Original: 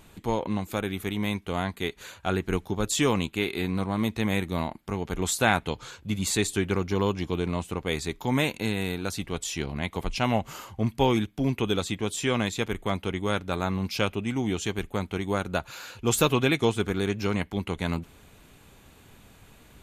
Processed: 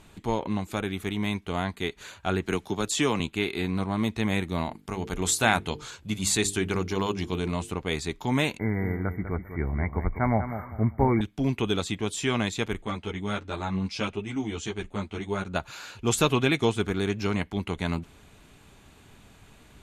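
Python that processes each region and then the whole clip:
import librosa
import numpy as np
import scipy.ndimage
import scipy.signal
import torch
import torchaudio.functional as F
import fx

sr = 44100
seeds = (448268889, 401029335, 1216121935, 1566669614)

y = fx.chain(x, sr, fx.low_shelf(hz=98.0, db=-11.5),
    fx.band_squash(depth_pct=40), at=(2.46, 3.2))
y = fx.chain(y, sr, fx.high_shelf(hz=6000.0, db=7.0),
    fx.hum_notches(base_hz=50, count=9), at=(4.65, 7.72))
y = fx.chain(y, sr, fx.brickwall_bandstop(low_hz=2300.0, high_hz=13000.0),
    fx.peak_eq(hz=71.0, db=10.5, octaves=0.87),
    fx.echo_feedback(ms=198, feedback_pct=28, wet_db=-10.0), at=(8.59, 11.21))
y = fx.chain(y, sr, fx.lowpass(hz=9300.0, slope=24),
    fx.ensemble(), at=(12.82, 15.56))
y = scipy.signal.sosfilt(scipy.signal.butter(2, 10000.0, 'lowpass', fs=sr, output='sos'), y)
y = fx.notch(y, sr, hz=510.0, q=12.0)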